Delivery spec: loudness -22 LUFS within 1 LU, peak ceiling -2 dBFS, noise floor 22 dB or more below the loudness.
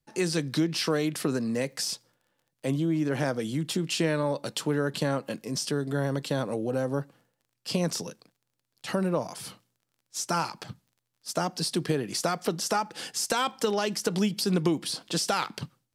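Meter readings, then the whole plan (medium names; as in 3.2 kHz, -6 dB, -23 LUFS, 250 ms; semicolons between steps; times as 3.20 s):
tick rate 30 per s; loudness -29.0 LUFS; peak level -12.0 dBFS; loudness target -22.0 LUFS
-> de-click; trim +7 dB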